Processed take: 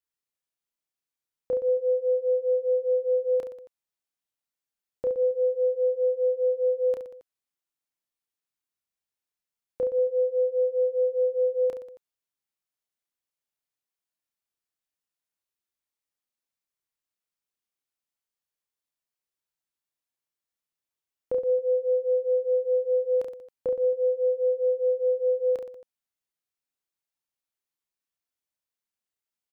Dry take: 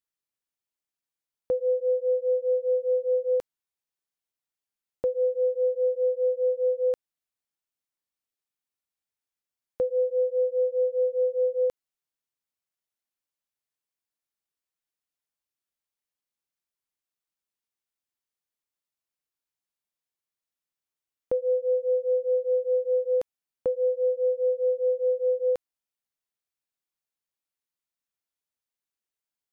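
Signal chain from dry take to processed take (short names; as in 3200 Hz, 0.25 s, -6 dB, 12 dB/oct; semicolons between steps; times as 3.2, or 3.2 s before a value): reverse bouncing-ball echo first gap 30 ms, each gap 1.3×, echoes 5; gain -3 dB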